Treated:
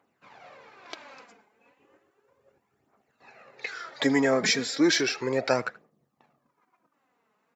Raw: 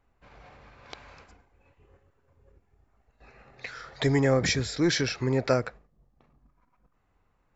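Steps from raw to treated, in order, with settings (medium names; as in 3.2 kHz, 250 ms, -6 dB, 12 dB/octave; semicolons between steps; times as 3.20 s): phaser 0.34 Hz, delay 4.8 ms, feedback 52%; Bessel high-pass 250 Hz, order 4; speakerphone echo 80 ms, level -20 dB; trim +2 dB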